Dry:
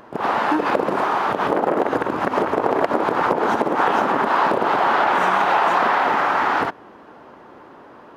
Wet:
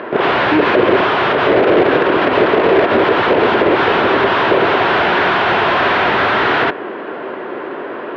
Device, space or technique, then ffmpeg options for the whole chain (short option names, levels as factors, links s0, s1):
overdrive pedal into a guitar cabinet: -filter_complex "[0:a]asplit=2[s0][s1];[s1]highpass=f=720:p=1,volume=31.6,asoftclip=type=tanh:threshold=0.668[s2];[s0][s2]amix=inputs=2:normalize=0,lowpass=f=2600:p=1,volume=0.501,highpass=96,equalizer=f=110:t=q:w=4:g=3,equalizer=f=380:t=q:w=4:g=7,equalizer=f=850:t=q:w=4:g=-9,equalizer=f=1200:t=q:w=4:g=-6,lowpass=f=3600:w=0.5412,lowpass=f=3600:w=1.3066"